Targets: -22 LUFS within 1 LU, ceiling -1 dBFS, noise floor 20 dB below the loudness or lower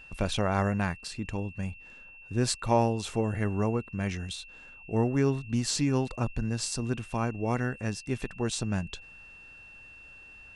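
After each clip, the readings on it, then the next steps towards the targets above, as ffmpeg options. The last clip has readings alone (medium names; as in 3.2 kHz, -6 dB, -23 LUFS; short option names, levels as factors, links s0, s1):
steady tone 2.7 kHz; tone level -48 dBFS; loudness -30.5 LUFS; peak level -11.5 dBFS; loudness target -22.0 LUFS
-> -af "bandreject=f=2700:w=30"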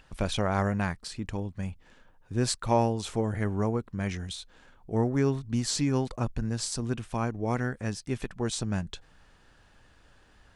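steady tone not found; loudness -30.5 LUFS; peak level -11.5 dBFS; loudness target -22.0 LUFS
-> -af "volume=2.66"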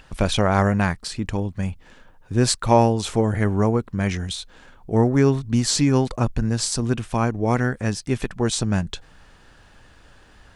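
loudness -22.0 LUFS; peak level -3.0 dBFS; noise floor -52 dBFS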